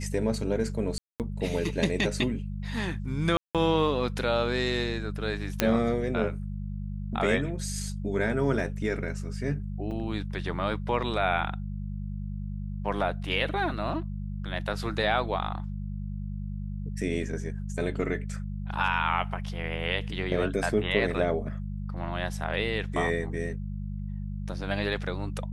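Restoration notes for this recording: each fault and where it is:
mains hum 50 Hz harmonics 4 −34 dBFS
0:00.98–0:01.20: drop-out 218 ms
0:03.37–0:03.55: drop-out 177 ms
0:05.60: click −6 dBFS
0:09.91: drop-out 3.3 ms

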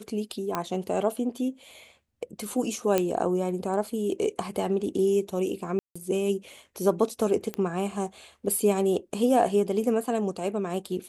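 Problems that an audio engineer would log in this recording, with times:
0:00.55: click −13 dBFS
0:02.98: click −9 dBFS
0:05.79–0:05.96: drop-out 165 ms
0:07.54: click −17 dBFS

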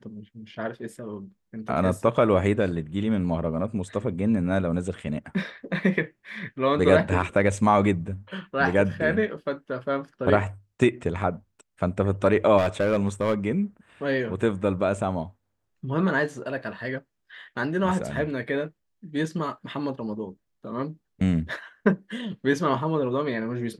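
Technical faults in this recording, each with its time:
0:12.57–0:13.34: clipping −17.5 dBFS

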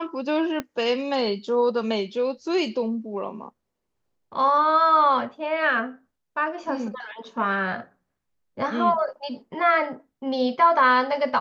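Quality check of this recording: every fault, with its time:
0:00.60: click −14 dBFS

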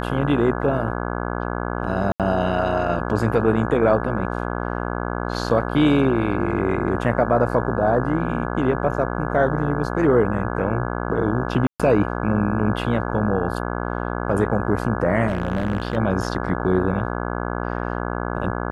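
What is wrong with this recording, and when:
mains buzz 60 Hz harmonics 28 −26 dBFS
0:02.12–0:02.20: drop-out 77 ms
0:11.67–0:11.80: drop-out 126 ms
0:15.27–0:15.97: clipping −16.5 dBFS

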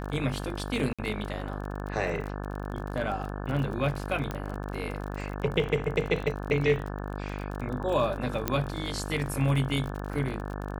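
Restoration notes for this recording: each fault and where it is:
mains buzz 50 Hz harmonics 35 −35 dBFS
surface crackle 38 per second −34 dBFS
0:00.93–0:00.99: drop-out 56 ms
0:04.31: click −19 dBFS
0:08.48: click −10 dBFS

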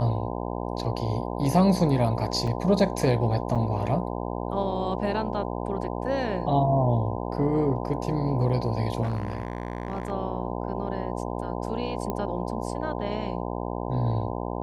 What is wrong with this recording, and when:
mains buzz 60 Hz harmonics 17 −31 dBFS
0:02.47: drop-out 4.6 ms
0:03.55–0:03.56: drop-out 6.4 ms
0:09.02–0:10.12: clipping −24 dBFS
0:12.10: click −16 dBFS

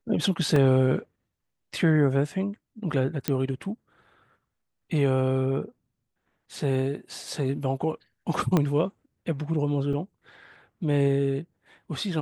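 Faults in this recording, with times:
0:00.56: drop-out 2.5 ms
0:03.28: click −9 dBFS
0:08.57: click −10 dBFS
0:09.93: drop-out 2.8 ms

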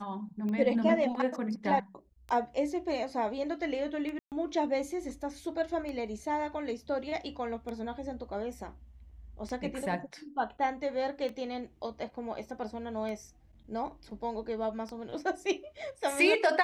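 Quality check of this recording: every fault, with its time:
scratch tick 33 1/3 rpm −27 dBFS
0:04.19–0:04.32: drop-out 128 ms

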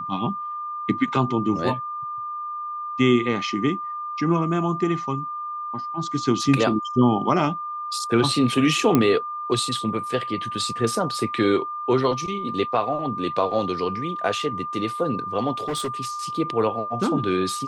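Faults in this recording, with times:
whistle 1,200 Hz −28 dBFS
0:08.95: click −5 dBFS
0:15.57–0:15.89: clipping −22.5 dBFS

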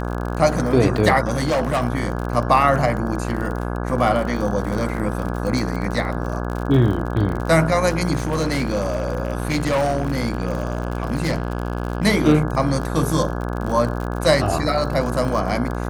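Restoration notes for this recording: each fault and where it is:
mains buzz 60 Hz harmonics 28 −25 dBFS
surface crackle 47 per second −26 dBFS
0:01.35–0:01.83: clipping −16 dBFS
0:08.18–0:12.06: clipping −16 dBFS

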